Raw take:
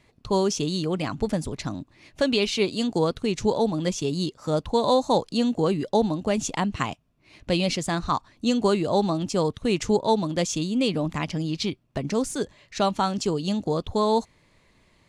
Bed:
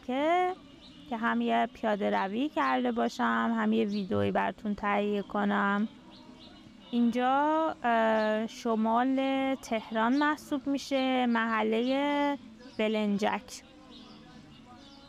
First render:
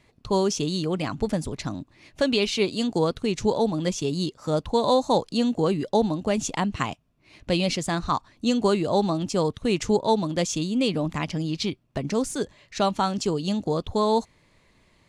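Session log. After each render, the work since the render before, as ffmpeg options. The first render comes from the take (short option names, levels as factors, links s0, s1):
-af anull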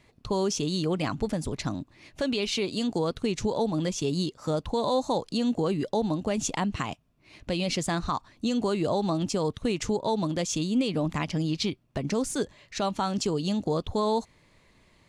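-af "alimiter=limit=0.141:level=0:latency=1:release=126"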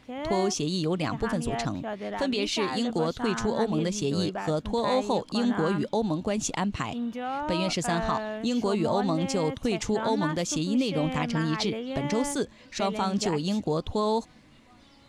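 -filter_complex "[1:a]volume=0.531[s0];[0:a][s0]amix=inputs=2:normalize=0"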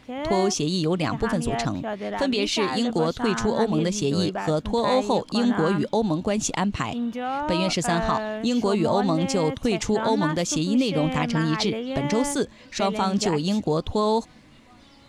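-af "volume=1.58"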